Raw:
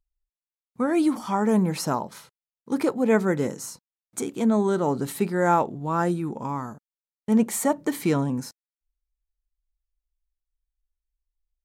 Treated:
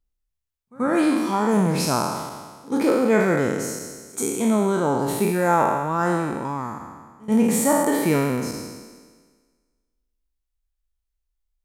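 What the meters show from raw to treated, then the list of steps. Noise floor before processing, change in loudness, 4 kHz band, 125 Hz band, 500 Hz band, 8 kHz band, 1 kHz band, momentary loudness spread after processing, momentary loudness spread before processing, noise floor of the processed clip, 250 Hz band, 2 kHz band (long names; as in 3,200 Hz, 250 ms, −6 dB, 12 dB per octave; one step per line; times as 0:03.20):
below −85 dBFS, +3.0 dB, +6.0 dB, +2.5 dB, +3.5 dB, +6.0 dB, +4.0 dB, 15 LU, 12 LU, −78 dBFS, +2.5 dB, +5.5 dB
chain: peak hold with a decay on every bin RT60 1.52 s
echo ahead of the sound 84 ms −23.5 dB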